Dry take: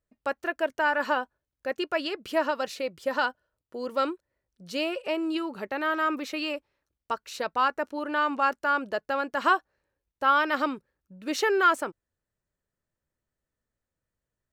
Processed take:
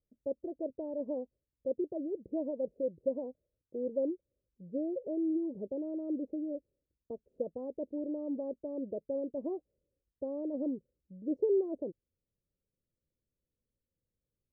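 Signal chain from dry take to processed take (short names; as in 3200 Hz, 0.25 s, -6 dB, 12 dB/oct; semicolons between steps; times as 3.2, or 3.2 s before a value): elliptic low-pass 540 Hz, stop band 60 dB; gain -1.5 dB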